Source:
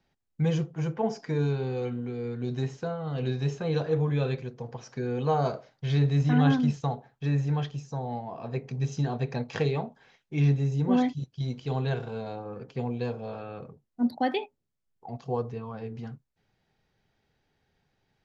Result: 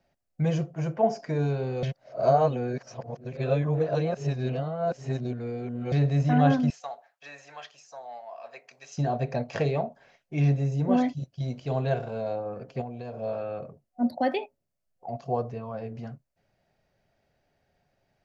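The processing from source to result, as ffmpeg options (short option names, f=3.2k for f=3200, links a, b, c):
-filter_complex "[0:a]asettb=1/sr,asplit=3[a][b][c];[a]atrim=end=6.704[d];[b]atrim=start=6.7:end=8.98,asetpts=PTS-STARTPTS,afade=t=in:d=0.004:c=qsin,afade=t=out:st=2.276:d=0.004:c=qsin,highpass=1.2k[e];[c]atrim=start=8.976[f];[d][e]acrossfade=d=0.004:c1=hsin:c2=qsin[g];[g][f]acrossfade=d=0.004:c1=qsin:c2=hsin,asettb=1/sr,asplit=3[h][i][j];[h]atrim=end=12.814[k];[i]atrim=start=12.81:end=13.21,asetpts=PTS-STARTPTS,afade=t=in:d=0.004:c=qsin,afade=t=out:st=0.396:d=0.004:c=qsin,acompressor=threshold=-34dB:ratio=6:attack=3.2:release=140:knee=1:detection=peak[l];[j]atrim=start=13.206[m];[k][l]acrossfade=d=0.004:c1=hsin:c2=qsin[n];[n][m]acrossfade=d=0.004:c1=qsin:c2=hsin,asplit=3[o][p][q];[o]atrim=end=1.832[r];[p]atrim=start=1.828:end=5.922,asetpts=PTS-STARTPTS,areverse[s];[q]atrim=start=5.918[t];[r][s]acrossfade=d=0.004:c1=hsin:c2=hsin[u];[u][t]acrossfade=d=0.004:c1=hsin:c2=hsin,superequalizer=8b=3.16:13b=0.631"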